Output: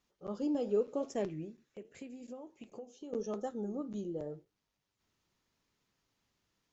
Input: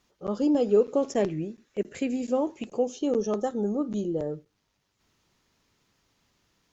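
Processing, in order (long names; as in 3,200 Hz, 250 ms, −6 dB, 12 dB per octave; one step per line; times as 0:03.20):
0:01.48–0:03.13: downward compressor 5 to 1, threshold −35 dBFS, peak gain reduction 13.5 dB
flanger 0.86 Hz, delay 3.9 ms, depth 7.8 ms, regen −80%
level −6 dB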